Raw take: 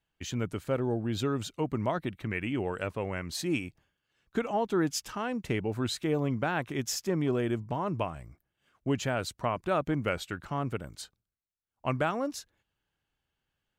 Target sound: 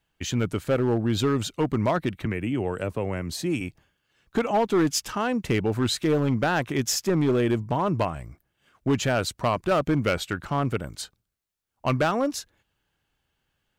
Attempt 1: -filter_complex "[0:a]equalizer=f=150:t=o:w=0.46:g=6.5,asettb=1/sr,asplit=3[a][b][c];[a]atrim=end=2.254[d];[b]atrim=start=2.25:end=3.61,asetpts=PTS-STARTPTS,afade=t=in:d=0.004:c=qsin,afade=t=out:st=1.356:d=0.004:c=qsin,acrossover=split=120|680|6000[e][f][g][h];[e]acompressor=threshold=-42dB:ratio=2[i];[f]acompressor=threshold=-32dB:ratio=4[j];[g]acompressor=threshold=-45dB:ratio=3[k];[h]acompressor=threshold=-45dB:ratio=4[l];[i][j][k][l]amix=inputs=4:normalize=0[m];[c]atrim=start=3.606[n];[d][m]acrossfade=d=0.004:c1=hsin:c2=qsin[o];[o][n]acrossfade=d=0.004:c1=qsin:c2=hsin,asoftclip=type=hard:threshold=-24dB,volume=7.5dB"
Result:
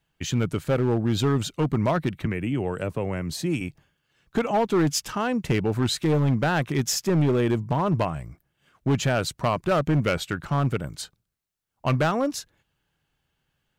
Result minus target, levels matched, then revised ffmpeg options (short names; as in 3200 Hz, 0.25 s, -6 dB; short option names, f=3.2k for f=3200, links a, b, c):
125 Hz band +2.5 dB
-filter_complex "[0:a]asettb=1/sr,asplit=3[a][b][c];[a]atrim=end=2.254[d];[b]atrim=start=2.25:end=3.61,asetpts=PTS-STARTPTS,afade=t=in:d=0.004:c=qsin,afade=t=out:st=1.356:d=0.004:c=qsin,acrossover=split=120|680|6000[e][f][g][h];[e]acompressor=threshold=-42dB:ratio=2[i];[f]acompressor=threshold=-32dB:ratio=4[j];[g]acompressor=threshold=-45dB:ratio=3[k];[h]acompressor=threshold=-45dB:ratio=4[l];[i][j][k][l]amix=inputs=4:normalize=0[m];[c]atrim=start=3.606[n];[d][m]acrossfade=d=0.004:c1=hsin:c2=qsin[o];[o][n]acrossfade=d=0.004:c1=qsin:c2=hsin,asoftclip=type=hard:threshold=-24dB,volume=7.5dB"